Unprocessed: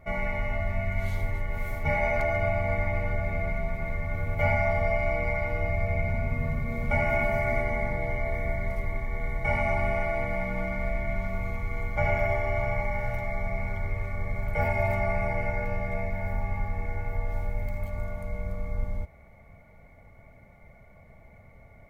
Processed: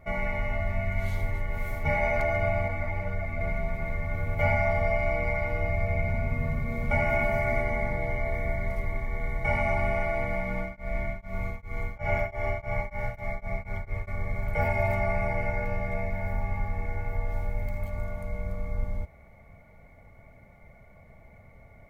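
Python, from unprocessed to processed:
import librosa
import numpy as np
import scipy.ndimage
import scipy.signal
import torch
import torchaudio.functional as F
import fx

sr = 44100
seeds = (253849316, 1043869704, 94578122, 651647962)

y = fx.ensemble(x, sr, at=(2.68, 3.41))
y = fx.tremolo_abs(y, sr, hz=fx.line((10.4, 1.9), (14.07, 5.0)), at=(10.4, 14.07), fade=0.02)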